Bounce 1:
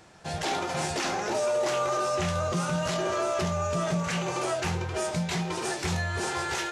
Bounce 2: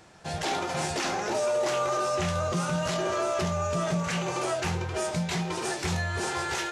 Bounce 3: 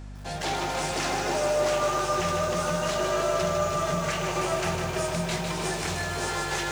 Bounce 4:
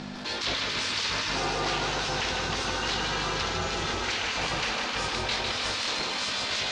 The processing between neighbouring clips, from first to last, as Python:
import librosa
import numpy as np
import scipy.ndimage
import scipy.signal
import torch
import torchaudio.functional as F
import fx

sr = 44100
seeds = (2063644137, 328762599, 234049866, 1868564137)

y1 = x
y2 = fx.low_shelf(y1, sr, hz=120.0, db=-9.5)
y2 = fx.dmg_buzz(y2, sr, base_hz=50.0, harmonics=5, level_db=-40.0, tilt_db=-6, odd_only=False)
y2 = fx.echo_crushed(y2, sr, ms=153, feedback_pct=80, bits=8, wet_db=-5)
y3 = fx.spec_gate(y2, sr, threshold_db=-10, keep='weak')
y3 = fx.lowpass_res(y3, sr, hz=4300.0, q=2.0)
y3 = fx.env_flatten(y3, sr, amount_pct=50)